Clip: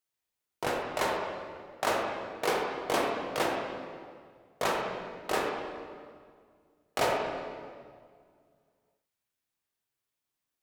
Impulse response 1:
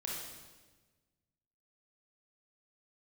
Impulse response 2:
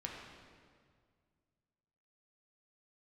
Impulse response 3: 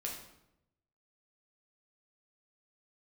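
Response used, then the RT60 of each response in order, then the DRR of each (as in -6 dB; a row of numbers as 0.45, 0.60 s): 2; 1.3, 2.0, 0.85 s; -3.5, -1.5, -2.0 dB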